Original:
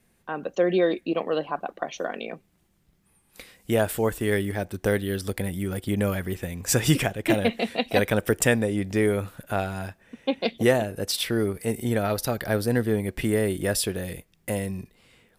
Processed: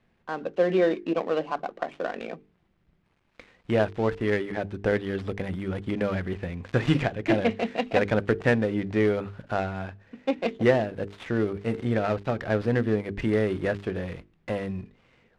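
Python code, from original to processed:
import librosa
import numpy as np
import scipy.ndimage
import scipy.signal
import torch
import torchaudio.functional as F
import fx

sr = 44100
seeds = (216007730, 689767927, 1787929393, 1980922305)

y = fx.dead_time(x, sr, dead_ms=0.11)
y = scipy.signal.sosfilt(scipy.signal.butter(2, 2900.0, 'lowpass', fs=sr, output='sos'), y)
y = fx.hum_notches(y, sr, base_hz=50, count=9)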